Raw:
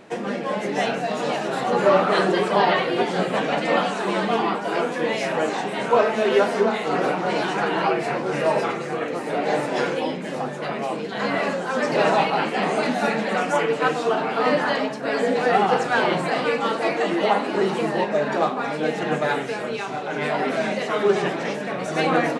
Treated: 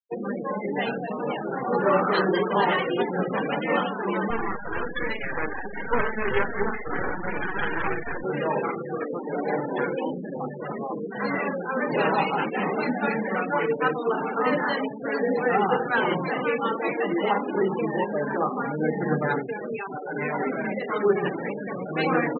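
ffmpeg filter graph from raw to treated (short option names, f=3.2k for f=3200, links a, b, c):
-filter_complex "[0:a]asettb=1/sr,asplit=3[a][b][c];[a]atrim=end=4.304[d];[b]atrim=start=4.3:end=8.24,asetpts=PTS-STARTPTS,afade=t=in:d=0.004:c=qsin,afade=t=out:st=3.936:d=0.004:c=qsin,equalizer=f=1.7k:t=o:w=0.45:g=10,aeval=exprs='max(val(0),0)':c=same[e];[c]atrim=start=8.236[f];[d][e]acrossfade=d=0.004:c1=hsin:c2=qsin[g];[g][f]acrossfade=d=0.004:c1=qsin:c2=hsin,asettb=1/sr,asplit=3[h][i][j];[h]atrim=end=18.554[k];[i]atrim=start=18.55:end=19.4,asetpts=PTS-STARTPTS,afade=t=in:d=0.004:c=qsin,afade=t=out:st=0.846:d=0.004:c=qsin,lowshelf=f=160:g=10,bandreject=f=2.7k:w=5.3[l];[j]atrim=start=19.396[m];[k][l]acrossfade=d=0.004:c1=hsin:c2=qsin[n];[n][m]acrossfade=d=0.004:c1=qsin:c2=hsin,afftfilt=real='re*gte(hypot(re,im),0.0794)':imag='im*gte(hypot(re,im),0.0794)':win_size=1024:overlap=0.75,equalizer=f=660:w=4.7:g=-10,volume=-1.5dB"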